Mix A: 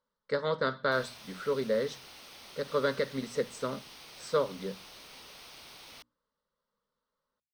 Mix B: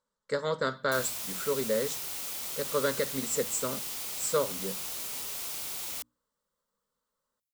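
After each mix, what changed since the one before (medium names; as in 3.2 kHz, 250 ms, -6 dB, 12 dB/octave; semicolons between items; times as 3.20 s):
background +6.0 dB; master: remove Savitzky-Golay filter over 15 samples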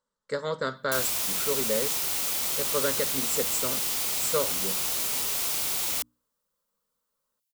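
background +8.5 dB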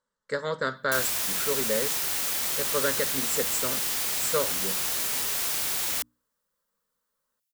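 master: add peaking EQ 1.7 kHz +6.5 dB 0.45 oct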